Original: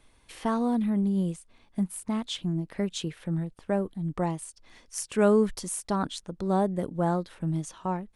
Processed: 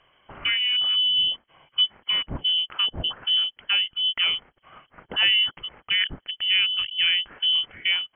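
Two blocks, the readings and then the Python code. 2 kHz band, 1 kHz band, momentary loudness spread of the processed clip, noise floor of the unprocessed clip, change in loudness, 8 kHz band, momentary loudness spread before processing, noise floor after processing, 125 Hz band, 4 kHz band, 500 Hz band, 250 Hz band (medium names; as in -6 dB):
+17.5 dB, -9.0 dB, 8 LU, -62 dBFS, +7.5 dB, under -40 dB, 9 LU, -71 dBFS, -13.0 dB, +25.0 dB, -19.5 dB, -21.0 dB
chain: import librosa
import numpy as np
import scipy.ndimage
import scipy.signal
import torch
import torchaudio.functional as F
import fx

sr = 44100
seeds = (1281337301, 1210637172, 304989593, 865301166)

p1 = scipy.signal.sosfilt(scipy.signal.butter(4, 110.0, 'highpass', fs=sr, output='sos'), x)
p2 = fx.peak_eq(p1, sr, hz=480.0, db=-11.5, octaves=1.9)
p3 = fx.rider(p2, sr, range_db=5, speed_s=0.5)
p4 = p2 + F.gain(torch.from_numpy(p3), 0.0).numpy()
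p5 = fx.freq_invert(p4, sr, carrier_hz=3200)
p6 = fx.air_absorb(p5, sr, metres=69.0)
y = F.gain(torch.from_numpy(p6), 4.5).numpy()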